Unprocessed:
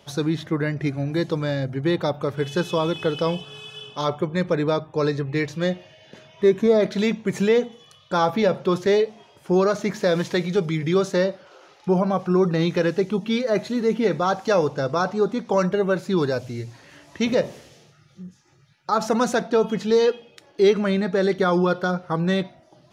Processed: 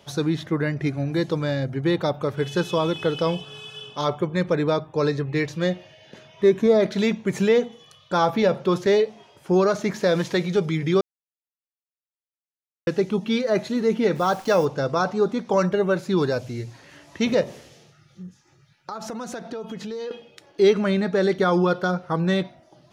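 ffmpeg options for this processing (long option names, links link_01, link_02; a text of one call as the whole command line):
ffmpeg -i in.wav -filter_complex "[0:a]asplit=3[link_01][link_02][link_03];[link_01]afade=type=out:start_time=14.15:duration=0.02[link_04];[link_02]acrusher=bits=8:dc=4:mix=0:aa=0.000001,afade=type=in:start_time=14.15:duration=0.02,afade=type=out:start_time=14.64:duration=0.02[link_05];[link_03]afade=type=in:start_time=14.64:duration=0.02[link_06];[link_04][link_05][link_06]amix=inputs=3:normalize=0,asettb=1/sr,asplit=3[link_07][link_08][link_09];[link_07]atrim=end=17.434[link_10];[link_08]atrim=start=17.43:end=20.11,asetpts=PTS-STARTPTS,afade=type=in:duration=0.004:curve=qsin,afade=type=out:start_time=2.676:duration=0.004:curve=qsin,acompressor=threshold=-30dB:ratio=6:attack=3.2:release=140:knee=1:detection=peak[link_11];[link_09]atrim=start=20.106[link_12];[link_10][link_11]acrossfade=duration=0.004:curve1=hsin:curve2=qsin[link_13];[link_13][link_12]acrossfade=duration=0.004:curve1=qsin:curve2=hsin,asplit=3[link_14][link_15][link_16];[link_14]atrim=end=11.01,asetpts=PTS-STARTPTS,afade=type=out:start_time=11.006:duration=0.004:curve=hsin[link_17];[link_15]atrim=start=11.01:end=12.87,asetpts=PTS-STARTPTS,volume=0[link_18];[link_16]atrim=start=12.87,asetpts=PTS-STARTPTS,afade=type=in:duration=0.004:curve=hsin[link_19];[link_17][link_18][link_19]concat=n=3:v=0:a=1" out.wav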